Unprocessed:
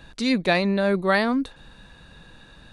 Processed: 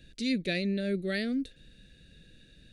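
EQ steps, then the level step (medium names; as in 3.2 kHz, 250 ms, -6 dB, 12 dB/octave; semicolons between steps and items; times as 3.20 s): Butterworth band-stop 980 Hz, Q 0.65; -7.0 dB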